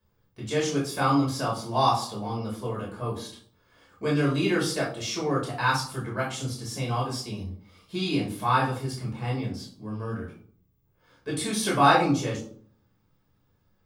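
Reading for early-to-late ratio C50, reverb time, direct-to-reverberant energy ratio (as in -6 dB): 6.0 dB, 0.55 s, -5.0 dB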